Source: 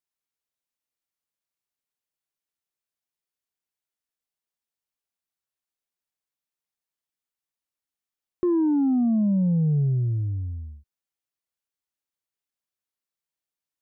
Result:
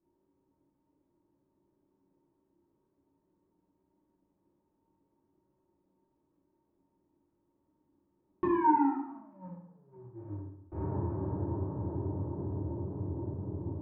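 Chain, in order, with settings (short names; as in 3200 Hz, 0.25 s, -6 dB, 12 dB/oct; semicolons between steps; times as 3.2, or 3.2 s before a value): de-hum 59.85 Hz, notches 3; sine folder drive 9 dB, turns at -15.5 dBFS; diffused feedback echo 0.472 s, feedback 70%, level -13 dB; low-pass opened by the level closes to 460 Hz, open at -16.5 dBFS; compressor 5:1, threshold -51 dBFS, peak gain reduction 29.5 dB; tone controls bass +3 dB, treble -6 dB; small resonant body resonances 290/920 Hz, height 15 dB, ringing for 55 ms; 8.72–10.72 gate -39 dBFS, range -34 dB; reverb RT60 0.75 s, pre-delay 3 ms, DRR -8.5 dB; gain +1.5 dB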